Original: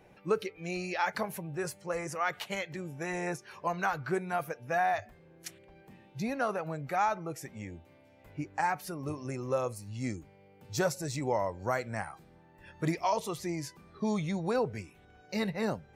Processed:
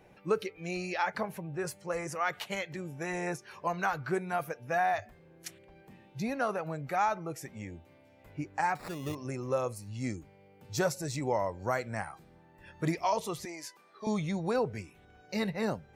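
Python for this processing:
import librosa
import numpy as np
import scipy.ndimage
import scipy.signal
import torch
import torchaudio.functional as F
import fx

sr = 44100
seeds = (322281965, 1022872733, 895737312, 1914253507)

y = fx.high_shelf(x, sr, hz=fx.line((1.02, 4000.0), (1.66, 5900.0)), db=-10.0, at=(1.02, 1.66), fade=0.02)
y = fx.sample_hold(y, sr, seeds[0], rate_hz=3100.0, jitter_pct=0, at=(8.75, 9.15))
y = fx.highpass(y, sr, hz=540.0, slope=12, at=(13.45, 14.07))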